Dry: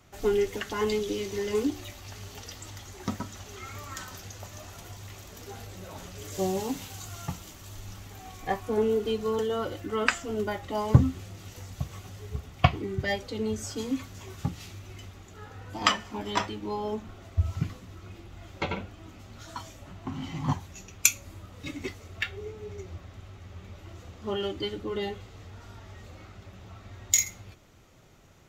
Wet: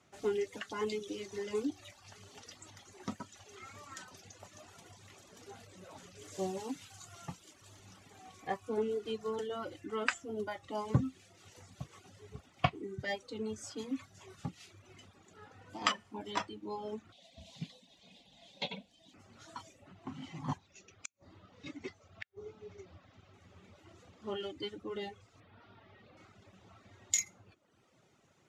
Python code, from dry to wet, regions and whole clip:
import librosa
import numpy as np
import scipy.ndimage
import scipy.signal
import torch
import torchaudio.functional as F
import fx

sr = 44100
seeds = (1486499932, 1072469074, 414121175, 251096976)

y = fx.chain(x, sr, fx.peak_eq(hz=3700.0, db=14.0, octaves=0.74),
    fx.fixed_phaser(hz=350.0, stages=6), at=(17.12, 19.14))
y = fx.chain(y, sr, fx.lowpass(hz=6400.0, slope=24),
    fx.dynamic_eq(hz=2800.0, q=1.5, threshold_db=-44.0, ratio=4.0, max_db=-5),
    fx.gate_flip(shuts_db=-19.0, range_db=-37), at=(20.58, 23.34))
y = fx.chain(y, sr, fx.lowpass(hz=4100.0, slope=24),
    fx.peak_eq(hz=77.0, db=-8.0, octaves=0.28), at=(25.4, 26.17))
y = scipy.signal.sosfilt(scipy.signal.cheby1(3, 1.0, 10000.0, 'lowpass', fs=sr, output='sos'), y)
y = fx.dereverb_blind(y, sr, rt60_s=0.8)
y = scipy.signal.sosfilt(scipy.signal.butter(2, 140.0, 'highpass', fs=sr, output='sos'), y)
y = y * 10.0 ** (-7.0 / 20.0)